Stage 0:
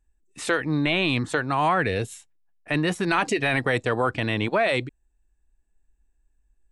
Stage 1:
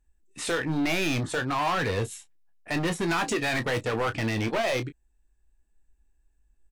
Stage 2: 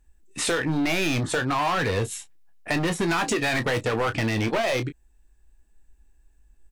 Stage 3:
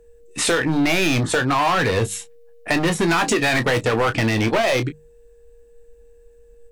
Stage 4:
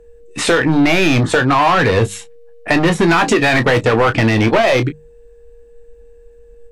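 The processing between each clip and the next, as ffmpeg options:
ffmpeg -i in.wav -filter_complex "[0:a]asoftclip=type=hard:threshold=-24dB,asplit=2[link_01][link_02];[link_02]aecho=0:1:18|31:0.316|0.224[link_03];[link_01][link_03]amix=inputs=2:normalize=0" out.wav
ffmpeg -i in.wav -af "acompressor=threshold=-32dB:ratio=3,volume=8.5dB" out.wav
ffmpeg -i in.wav -af "aeval=exprs='val(0)+0.00178*sin(2*PI*470*n/s)':channel_layout=same,bandreject=frequency=50:width_type=h:width=6,bandreject=frequency=100:width_type=h:width=6,bandreject=frequency=150:width_type=h:width=6,bandreject=frequency=200:width_type=h:width=6,volume=5.5dB" out.wav
ffmpeg -i in.wav -af "lowpass=frequency=3400:poles=1,volume=6.5dB" out.wav

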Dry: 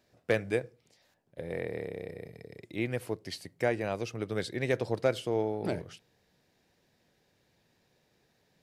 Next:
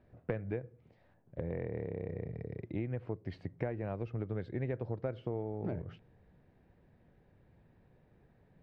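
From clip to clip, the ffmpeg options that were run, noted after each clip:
ffmpeg -i in.wav -af "lowpass=1900,aemphasis=mode=reproduction:type=bsi,acompressor=threshold=-35dB:ratio=6,volume=1.5dB" out.wav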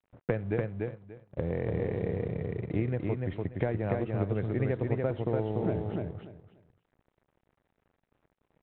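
ffmpeg -i in.wav -af "aresample=8000,aeval=exprs='sgn(val(0))*max(abs(val(0))-0.00112,0)':channel_layout=same,aresample=44100,aecho=1:1:291|582|873:0.708|0.142|0.0283,volume=6.5dB" out.wav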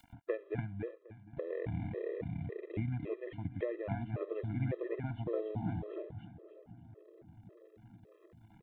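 ffmpeg -i in.wav -filter_complex "[0:a]asplit=2[link_01][link_02];[link_02]adelay=759,lowpass=frequency=850:poles=1,volume=-22dB,asplit=2[link_03][link_04];[link_04]adelay=759,lowpass=frequency=850:poles=1,volume=0.54,asplit=2[link_05][link_06];[link_06]adelay=759,lowpass=frequency=850:poles=1,volume=0.54,asplit=2[link_07][link_08];[link_08]adelay=759,lowpass=frequency=850:poles=1,volume=0.54[link_09];[link_01][link_03][link_05][link_07][link_09]amix=inputs=5:normalize=0,acompressor=mode=upward:threshold=-38dB:ratio=2.5,afftfilt=real='re*gt(sin(2*PI*1.8*pts/sr)*(1-2*mod(floor(b*sr/1024/340),2)),0)':imag='im*gt(sin(2*PI*1.8*pts/sr)*(1-2*mod(floor(b*sr/1024/340),2)),0)':win_size=1024:overlap=0.75,volume=-4dB" out.wav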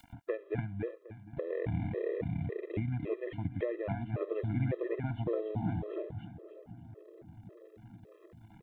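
ffmpeg -i in.wav -af "alimiter=level_in=2.5dB:limit=-24dB:level=0:latency=1:release=400,volume=-2.5dB,volume=4.5dB" out.wav

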